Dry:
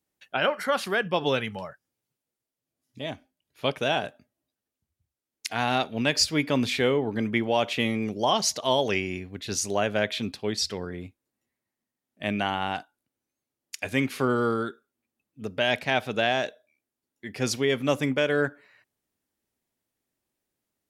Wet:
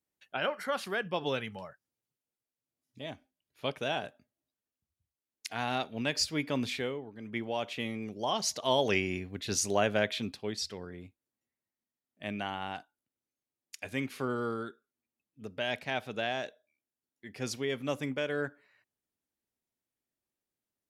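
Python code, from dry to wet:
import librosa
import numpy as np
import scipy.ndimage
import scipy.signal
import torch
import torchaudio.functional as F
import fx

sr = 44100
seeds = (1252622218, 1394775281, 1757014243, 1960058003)

y = fx.gain(x, sr, db=fx.line((6.72, -7.5), (7.16, -20.0), (7.37, -10.0), (8.12, -10.0), (8.93, -2.0), (9.87, -2.0), (10.7, -9.0)))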